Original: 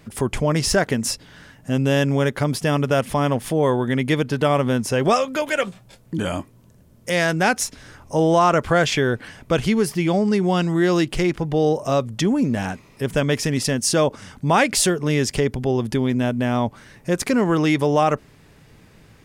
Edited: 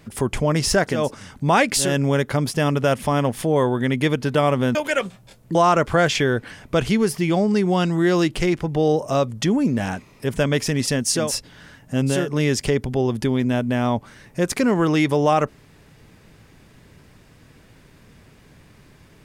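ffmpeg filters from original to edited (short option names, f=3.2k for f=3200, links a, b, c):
-filter_complex "[0:a]asplit=7[a][b][c][d][e][f][g];[a]atrim=end=1.11[h];[b]atrim=start=13.88:end=15[i];[c]atrim=start=1.82:end=4.822[j];[d]atrim=start=5.368:end=6.172[k];[e]atrim=start=8.318:end=14.12[l];[f]atrim=start=0.87:end=2.06[m];[g]atrim=start=14.76[n];[h][i]acrossfade=d=0.24:c1=tri:c2=tri[o];[o][j]acrossfade=d=0.24:c1=tri:c2=tri[p];[p][k]acrossfade=d=0.004:c1=hsin:c2=hsin[q];[q][l]acrossfade=d=0.004:c1=hsin:c2=hsin[r];[r][m]acrossfade=d=0.24:c1=tri:c2=tri[s];[s][n]acrossfade=d=0.24:c1=tri:c2=tri"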